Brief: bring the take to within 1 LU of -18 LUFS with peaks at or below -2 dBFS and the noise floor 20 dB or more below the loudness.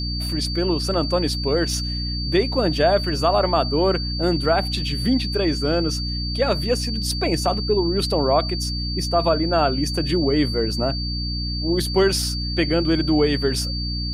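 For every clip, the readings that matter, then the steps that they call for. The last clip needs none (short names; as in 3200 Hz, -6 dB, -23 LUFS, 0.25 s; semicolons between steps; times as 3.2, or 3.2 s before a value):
hum 60 Hz; harmonics up to 300 Hz; hum level -24 dBFS; steady tone 4600 Hz; tone level -28 dBFS; loudness -21.0 LUFS; peak -5.5 dBFS; loudness target -18.0 LUFS
-> de-hum 60 Hz, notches 5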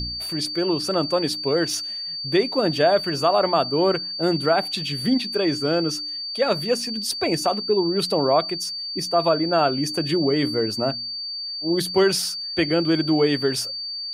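hum none; steady tone 4600 Hz; tone level -28 dBFS
-> notch 4600 Hz, Q 30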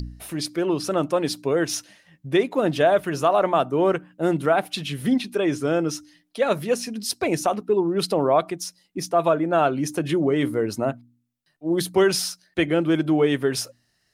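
steady tone none; loudness -23.0 LUFS; peak -7.5 dBFS; loudness target -18.0 LUFS
-> gain +5 dB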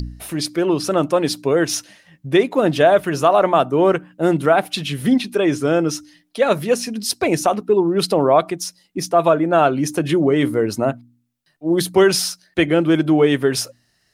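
loudness -18.0 LUFS; peak -2.5 dBFS; noise floor -64 dBFS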